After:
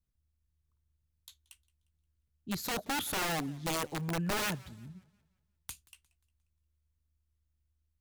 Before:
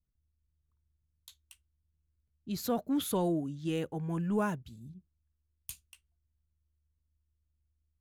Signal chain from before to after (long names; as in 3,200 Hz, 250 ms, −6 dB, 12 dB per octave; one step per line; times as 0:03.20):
wrap-around overflow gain 28 dB
feedback echo with a swinging delay time 177 ms, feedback 41%, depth 157 cents, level −23.5 dB